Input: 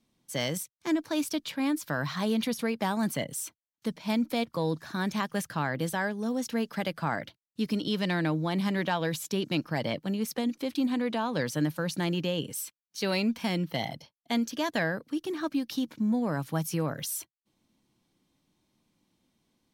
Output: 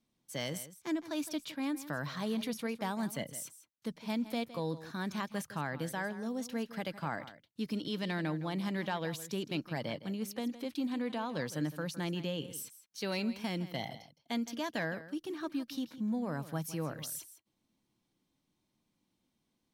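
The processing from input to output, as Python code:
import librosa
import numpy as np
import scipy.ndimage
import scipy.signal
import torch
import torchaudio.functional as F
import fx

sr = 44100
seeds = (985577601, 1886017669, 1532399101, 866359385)

y = x + 10.0 ** (-14.5 / 20.0) * np.pad(x, (int(162 * sr / 1000.0), 0))[:len(x)]
y = y * librosa.db_to_amplitude(-7.0)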